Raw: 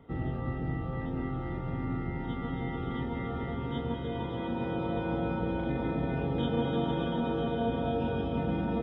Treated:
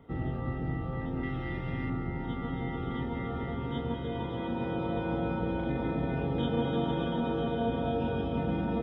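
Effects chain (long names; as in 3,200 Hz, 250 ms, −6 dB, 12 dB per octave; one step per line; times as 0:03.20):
0:01.23–0:01.90: high shelf with overshoot 1,600 Hz +7 dB, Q 1.5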